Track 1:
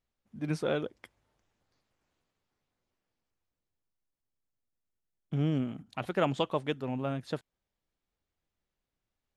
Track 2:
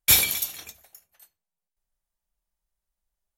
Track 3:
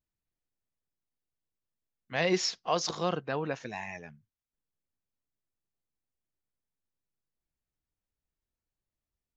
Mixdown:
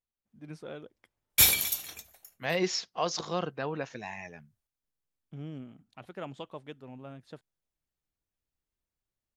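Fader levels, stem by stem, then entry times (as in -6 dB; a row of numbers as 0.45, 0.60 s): -12.0, -3.0, -1.5 dB; 0.00, 1.30, 0.30 s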